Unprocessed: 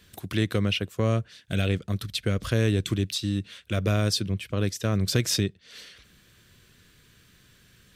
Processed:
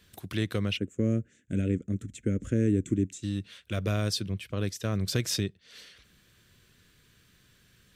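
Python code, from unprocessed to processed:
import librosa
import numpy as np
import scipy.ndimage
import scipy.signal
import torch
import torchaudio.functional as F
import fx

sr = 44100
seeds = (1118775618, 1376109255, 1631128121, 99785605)

y = fx.curve_eq(x, sr, hz=(150.0, 270.0, 570.0, 900.0, 1400.0, 2100.0, 4700.0, 7100.0, 12000.0), db=(0, 10, -4, -25, -9, -6, -25, 4, -21), at=(0.76, 3.22), fade=0.02)
y = y * 10.0 ** (-4.5 / 20.0)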